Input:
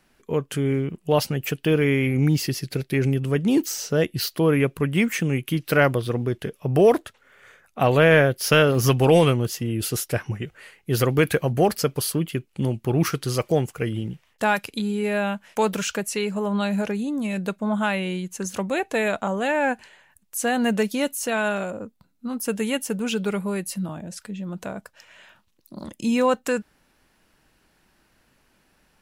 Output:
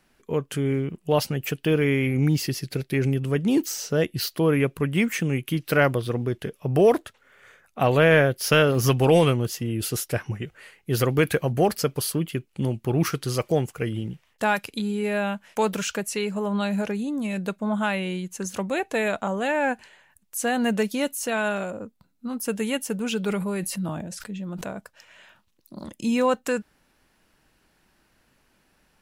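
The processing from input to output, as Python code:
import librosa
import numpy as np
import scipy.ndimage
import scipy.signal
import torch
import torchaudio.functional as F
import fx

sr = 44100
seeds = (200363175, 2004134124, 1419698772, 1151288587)

y = fx.sustainer(x, sr, db_per_s=35.0, at=(23.23, 24.69), fade=0.02)
y = F.gain(torch.from_numpy(y), -1.5).numpy()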